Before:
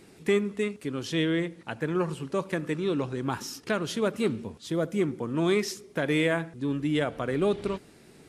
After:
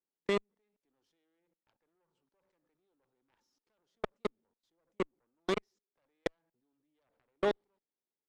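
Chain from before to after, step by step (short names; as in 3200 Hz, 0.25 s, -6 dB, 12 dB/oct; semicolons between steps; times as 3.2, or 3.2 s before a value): level quantiser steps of 23 dB; speaker cabinet 230–6700 Hz, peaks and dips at 540 Hz +5 dB, 880 Hz +8 dB, 2600 Hz -5 dB; added harmonics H 2 -13 dB, 3 -35 dB, 4 -35 dB, 7 -17 dB, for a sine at -13 dBFS; gain -4.5 dB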